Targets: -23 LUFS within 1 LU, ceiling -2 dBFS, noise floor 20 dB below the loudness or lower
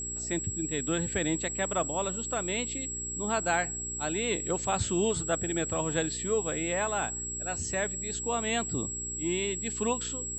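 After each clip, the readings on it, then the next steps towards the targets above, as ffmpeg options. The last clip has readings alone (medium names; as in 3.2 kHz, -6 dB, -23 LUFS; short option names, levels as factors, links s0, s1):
hum 60 Hz; highest harmonic 420 Hz; hum level -41 dBFS; steady tone 7.7 kHz; tone level -34 dBFS; loudness -30.0 LUFS; peak level -14.5 dBFS; loudness target -23.0 LUFS
-> -af "bandreject=f=60:t=h:w=4,bandreject=f=120:t=h:w=4,bandreject=f=180:t=h:w=4,bandreject=f=240:t=h:w=4,bandreject=f=300:t=h:w=4,bandreject=f=360:t=h:w=4,bandreject=f=420:t=h:w=4"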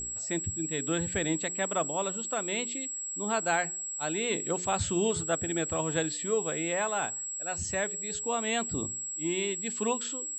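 hum not found; steady tone 7.7 kHz; tone level -34 dBFS
-> -af "bandreject=f=7700:w=30"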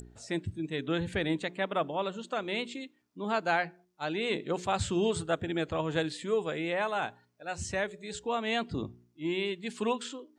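steady tone not found; loudness -32.5 LUFS; peak level -15.5 dBFS; loudness target -23.0 LUFS
-> -af "volume=2.99"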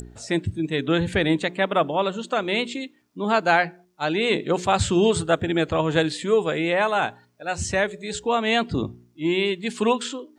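loudness -23.0 LUFS; peak level -6.0 dBFS; noise floor -60 dBFS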